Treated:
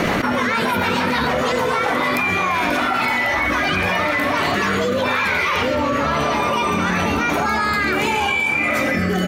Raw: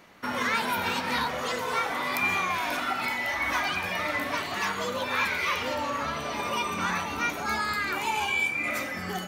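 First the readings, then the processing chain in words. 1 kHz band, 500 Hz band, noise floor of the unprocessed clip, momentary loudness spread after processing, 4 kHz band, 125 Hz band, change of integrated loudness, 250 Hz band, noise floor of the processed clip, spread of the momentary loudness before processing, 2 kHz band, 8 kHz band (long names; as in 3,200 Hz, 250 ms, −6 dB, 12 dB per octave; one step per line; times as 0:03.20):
+9.0 dB, +13.0 dB, −34 dBFS, 1 LU, +7.5 dB, +15.0 dB, +9.5 dB, +14.5 dB, −20 dBFS, 5 LU, +9.0 dB, +5.5 dB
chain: high-shelf EQ 2,700 Hz −8 dB
single-tap delay 346 ms −16.5 dB
rotating-speaker cabinet horn 6.7 Hz, later 0.9 Hz, at 0:01.91
envelope flattener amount 100%
level +8 dB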